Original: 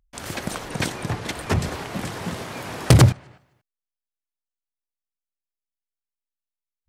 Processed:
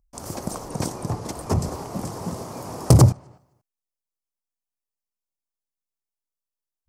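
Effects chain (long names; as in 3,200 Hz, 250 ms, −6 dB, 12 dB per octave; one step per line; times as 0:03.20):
flat-topped bell 2,400 Hz −14.5 dB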